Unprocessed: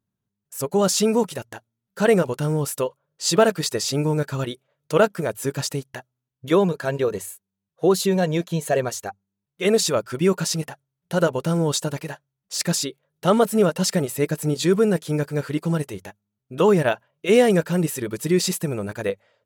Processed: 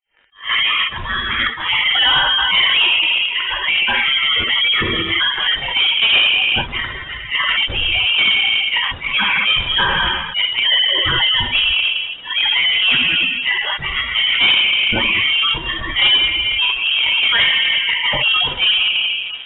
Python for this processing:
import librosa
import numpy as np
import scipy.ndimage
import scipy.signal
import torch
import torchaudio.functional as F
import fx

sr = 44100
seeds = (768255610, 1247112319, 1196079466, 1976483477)

p1 = x[::-1].copy()
p2 = scipy.signal.sosfilt(scipy.signal.butter(4, 710.0, 'highpass', fs=sr, output='sos'), p1)
p3 = fx.rev_plate(p2, sr, seeds[0], rt60_s=1.6, hf_ratio=0.8, predelay_ms=0, drr_db=-2.0)
p4 = fx.spec_gate(p3, sr, threshold_db=-15, keep='strong')
p5 = fx.over_compress(p4, sr, threshold_db=-35.0, ratio=-1.0)
p6 = p4 + F.gain(torch.from_numpy(p5), 0.0).numpy()
p7 = fx.leveller(p6, sr, passes=3)
p8 = fx.freq_invert(p7, sr, carrier_hz=3700)
y = fx.attack_slew(p8, sr, db_per_s=210.0)